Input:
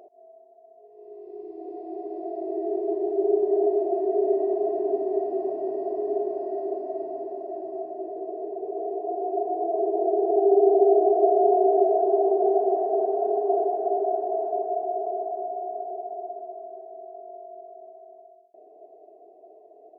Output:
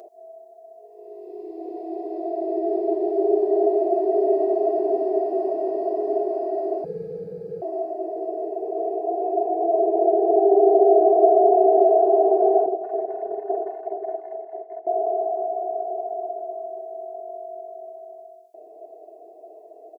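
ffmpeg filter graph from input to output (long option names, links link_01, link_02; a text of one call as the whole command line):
ffmpeg -i in.wav -filter_complex "[0:a]asettb=1/sr,asplit=3[link_01][link_02][link_03];[link_01]atrim=end=6.844[link_04];[link_02]atrim=start=6.84:end=7.62,asetpts=PTS-STARTPTS,afade=type=in:duration=0.004:curve=qsin,afade=type=out:start_time=0.776:duration=0.004:curve=qsin,highpass=frequency=700:poles=1,afreqshift=-220[link_05];[link_03]atrim=start=7.616[link_06];[link_04][link_05]acrossfade=duration=0.004:curve1=hsin:curve2=qsin[link_07];[link_07][link_06]acrossfade=duration=0.004:curve1=qsin:curve2=hsin,asettb=1/sr,asplit=3[link_08][link_09][link_10];[link_08]atrim=end=12.664[link_11];[link_09]atrim=start=12.66:end=14.87,asetpts=PTS-STARTPTS,afade=type=in:duration=0.004:curve=qsin,afade=type=out:start_time=2.206:duration=0.004:curve=qsin,agate=range=-33dB:threshold=-18dB:ratio=3:release=100:detection=peak,acrossover=split=930[link_12][link_13];[link_13]adelay=170[link_14];[link_12][link_14]amix=inputs=2:normalize=0,atrim=end_sample=97461[link_15];[link_10]atrim=start=14.866[link_16];[link_11][link_15]acrossfade=duration=0.004:curve1=hsin:curve2=qsin[link_17];[link_17][link_16]acrossfade=duration=0.004:curve1=qsin:curve2=hsin,bass=frequency=250:gain=-11,treble=frequency=4000:gain=8,aecho=1:1:6.2:0.31,volume=6dB" out.wav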